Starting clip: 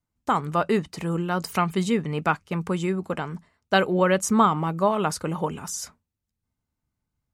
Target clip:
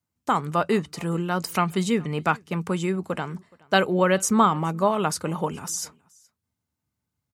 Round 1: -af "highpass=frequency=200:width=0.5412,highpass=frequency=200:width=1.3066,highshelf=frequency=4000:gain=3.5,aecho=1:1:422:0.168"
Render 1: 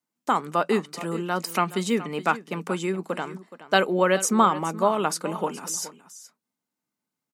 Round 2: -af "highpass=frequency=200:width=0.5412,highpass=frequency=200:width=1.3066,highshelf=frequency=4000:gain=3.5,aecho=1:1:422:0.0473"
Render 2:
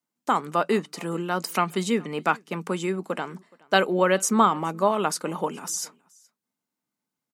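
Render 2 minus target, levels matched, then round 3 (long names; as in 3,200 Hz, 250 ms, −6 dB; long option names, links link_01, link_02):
125 Hz band −5.5 dB
-af "highpass=frequency=71:width=0.5412,highpass=frequency=71:width=1.3066,highshelf=frequency=4000:gain=3.5,aecho=1:1:422:0.0473"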